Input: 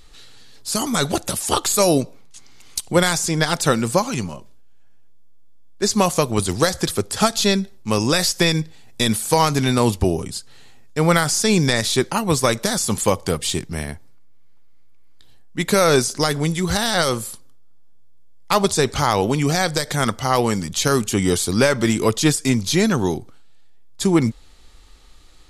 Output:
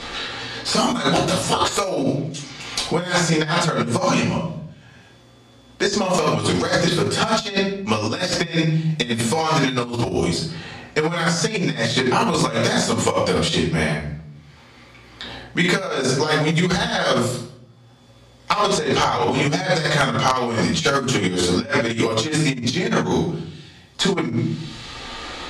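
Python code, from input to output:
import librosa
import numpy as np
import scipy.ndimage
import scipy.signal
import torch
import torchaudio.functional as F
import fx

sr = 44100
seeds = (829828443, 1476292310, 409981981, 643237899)

p1 = 10.0 ** (-15.0 / 20.0) * np.tanh(x / 10.0 ** (-15.0 / 20.0))
p2 = x + (p1 * 10.0 ** (-11.0 / 20.0))
p3 = fx.room_shoebox(p2, sr, seeds[0], volume_m3=62.0, walls='mixed', distance_m=1.6)
p4 = fx.over_compress(p3, sr, threshold_db=-10.0, ratio=-0.5)
p5 = fx.dynamic_eq(p4, sr, hz=160.0, q=5.0, threshold_db=-28.0, ratio=4.0, max_db=6)
p6 = scipy.signal.sosfilt(scipy.signal.butter(2, 55.0, 'highpass', fs=sr, output='sos'), p5)
p7 = fx.low_shelf(p6, sr, hz=280.0, db=-10.5)
p8 = fx.hum_notches(p7, sr, base_hz=50, count=4)
p9 = (np.mod(10.0 ** (0.0 / 20.0) * p8 + 1.0, 2.0) - 1.0) / 10.0 ** (0.0 / 20.0)
p10 = scipy.signal.sosfilt(scipy.signal.butter(2, 4900.0, 'lowpass', fs=sr, output='sos'), p9)
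p11 = fx.band_squash(p10, sr, depth_pct=70)
y = p11 * 10.0 ** (-4.0 / 20.0)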